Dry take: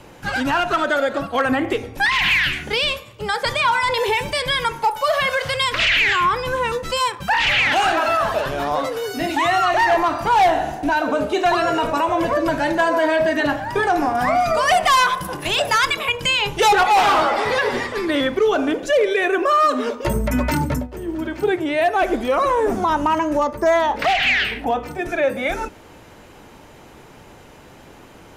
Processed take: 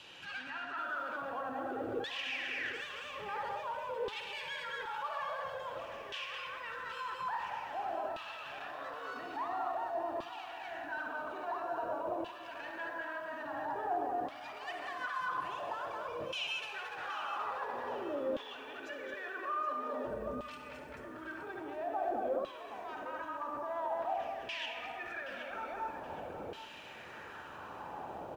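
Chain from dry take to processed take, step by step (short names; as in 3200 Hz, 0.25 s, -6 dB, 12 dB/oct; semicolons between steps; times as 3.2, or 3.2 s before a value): tracing distortion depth 0.13 ms; bell 81 Hz +4.5 dB 0.38 oct; loudspeakers at several distances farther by 24 m -12 dB, 76 m -5 dB; negative-ratio compressor -21 dBFS, ratio -0.5; limiter -26 dBFS, peak gain reduction 20 dB; reverb RT60 1.7 s, pre-delay 45 ms, DRR 5.5 dB; LFO band-pass saw down 0.49 Hz 520–3300 Hz; low shelf 240 Hz +12 dB; notch 2100 Hz, Q 6.9; lo-fi delay 0.773 s, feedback 35%, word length 10-bit, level -12 dB; gain -1 dB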